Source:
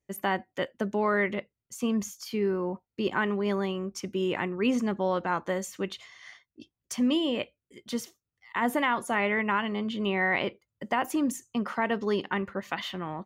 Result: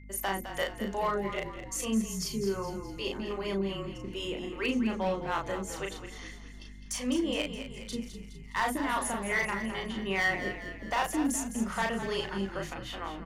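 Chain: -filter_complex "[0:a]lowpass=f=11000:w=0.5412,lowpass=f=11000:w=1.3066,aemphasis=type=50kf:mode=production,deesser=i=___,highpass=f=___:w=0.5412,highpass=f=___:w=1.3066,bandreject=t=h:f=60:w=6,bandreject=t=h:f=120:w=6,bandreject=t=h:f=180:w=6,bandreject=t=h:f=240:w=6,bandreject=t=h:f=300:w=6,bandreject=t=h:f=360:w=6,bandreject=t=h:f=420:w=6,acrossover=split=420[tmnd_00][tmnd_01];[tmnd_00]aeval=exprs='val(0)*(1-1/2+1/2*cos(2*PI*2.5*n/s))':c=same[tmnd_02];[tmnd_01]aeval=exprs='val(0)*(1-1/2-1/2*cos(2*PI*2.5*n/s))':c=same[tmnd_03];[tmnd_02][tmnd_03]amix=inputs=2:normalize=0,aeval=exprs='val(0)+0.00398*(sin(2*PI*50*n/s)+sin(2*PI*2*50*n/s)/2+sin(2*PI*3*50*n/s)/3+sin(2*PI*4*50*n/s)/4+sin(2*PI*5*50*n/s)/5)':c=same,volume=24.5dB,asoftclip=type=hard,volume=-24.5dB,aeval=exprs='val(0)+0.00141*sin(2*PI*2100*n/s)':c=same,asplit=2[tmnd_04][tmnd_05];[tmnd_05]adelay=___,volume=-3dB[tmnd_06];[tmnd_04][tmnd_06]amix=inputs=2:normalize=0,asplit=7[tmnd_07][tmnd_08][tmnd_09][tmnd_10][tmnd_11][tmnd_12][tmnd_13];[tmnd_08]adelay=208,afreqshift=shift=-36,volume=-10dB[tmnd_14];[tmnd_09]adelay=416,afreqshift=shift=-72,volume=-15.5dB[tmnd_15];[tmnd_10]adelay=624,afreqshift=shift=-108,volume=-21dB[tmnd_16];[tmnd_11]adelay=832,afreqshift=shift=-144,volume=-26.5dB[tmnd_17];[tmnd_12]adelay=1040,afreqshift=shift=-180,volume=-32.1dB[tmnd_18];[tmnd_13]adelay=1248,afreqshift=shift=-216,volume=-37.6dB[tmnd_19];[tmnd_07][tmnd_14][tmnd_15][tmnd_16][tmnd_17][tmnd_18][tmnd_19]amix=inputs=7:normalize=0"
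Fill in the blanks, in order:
0.45, 200, 200, 36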